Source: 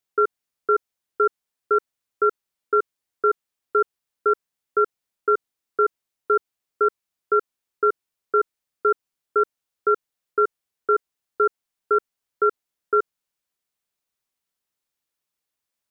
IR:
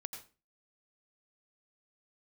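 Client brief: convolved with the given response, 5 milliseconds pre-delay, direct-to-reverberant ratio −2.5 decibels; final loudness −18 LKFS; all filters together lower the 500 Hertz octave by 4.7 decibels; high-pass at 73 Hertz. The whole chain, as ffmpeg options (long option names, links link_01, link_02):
-filter_complex "[0:a]highpass=73,equalizer=frequency=500:width_type=o:gain=-6,asplit=2[link_01][link_02];[1:a]atrim=start_sample=2205,adelay=5[link_03];[link_02][link_03]afir=irnorm=-1:irlink=0,volume=5dB[link_04];[link_01][link_04]amix=inputs=2:normalize=0,volume=2dB"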